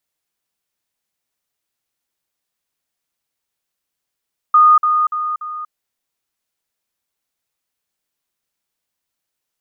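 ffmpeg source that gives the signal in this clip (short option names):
-f lavfi -i "aevalsrc='pow(10,(-6-6*floor(t/0.29))/20)*sin(2*PI*1230*t)*clip(min(mod(t,0.29),0.24-mod(t,0.29))/0.005,0,1)':d=1.16:s=44100"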